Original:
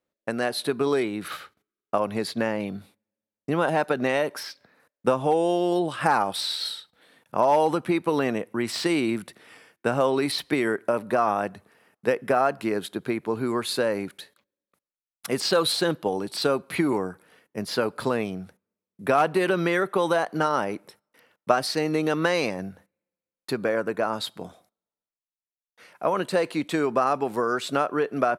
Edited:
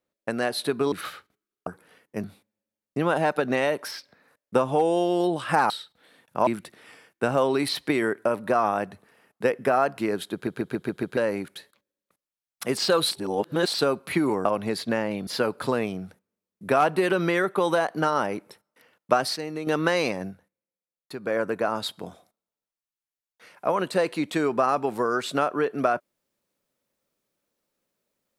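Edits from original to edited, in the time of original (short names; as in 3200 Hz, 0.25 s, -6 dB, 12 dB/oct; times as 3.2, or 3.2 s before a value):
0.92–1.19 cut
1.94–2.76 swap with 17.08–17.65
6.22–6.68 cut
7.45–9.1 cut
12.96 stutter in place 0.14 s, 6 plays
15.74–16.36 reverse
21.74–22.05 gain -8 dB
22.64–23.73 dip -8.5 dB, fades 0.13 s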